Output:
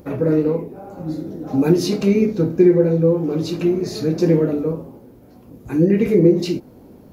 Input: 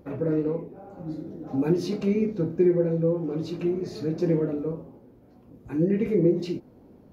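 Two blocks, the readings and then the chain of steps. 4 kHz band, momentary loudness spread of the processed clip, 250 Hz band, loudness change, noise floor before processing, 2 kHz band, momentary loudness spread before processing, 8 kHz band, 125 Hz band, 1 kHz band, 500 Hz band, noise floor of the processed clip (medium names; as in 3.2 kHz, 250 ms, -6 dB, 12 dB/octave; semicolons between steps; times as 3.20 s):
+12.5 dB, 14 LU, +8.0 dB, +8.0 dB, -54 dBFS, +9.5 dB, 14 LU, no reading, +8.0 dB, +8.5 dB, +8.0 dB, -45 dBFS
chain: treble shelf 4.9 kHz +10.5 dB; trim +8 dB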